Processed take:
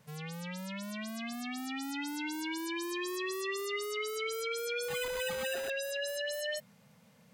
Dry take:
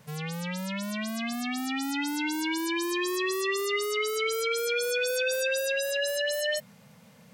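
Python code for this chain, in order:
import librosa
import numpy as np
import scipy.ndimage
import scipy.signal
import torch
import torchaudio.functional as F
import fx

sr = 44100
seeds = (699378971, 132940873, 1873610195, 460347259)

y = fx.resample_bad(x, sr, factor=8, down='none', up='hold', at=(4.88, 5.7))
y = y * 10.0 ** (-7.5 / 20.0)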